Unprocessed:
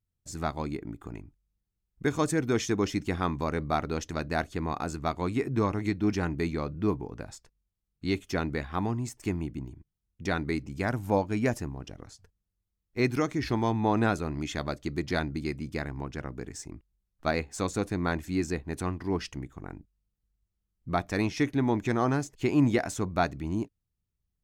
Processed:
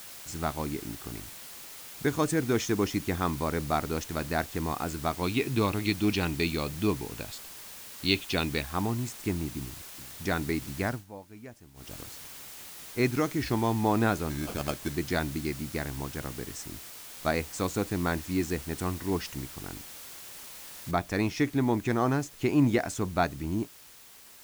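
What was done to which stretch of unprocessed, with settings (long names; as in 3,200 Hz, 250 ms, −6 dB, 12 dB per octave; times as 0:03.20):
0:05.23–0:08.62: flat-topped bell 3,300 Hz +13 dB 1.1 octaves
0:09.58–0:10.26: delay throw 400 ms, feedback 80%, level −13 dB
0:10.85–0:11.94: duck −19 dB, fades 0.20 s
0:14.30–0:14.95: sample-rate reduction 1,900 Hz
0:20.91: noise floor change −45 dB −52 dB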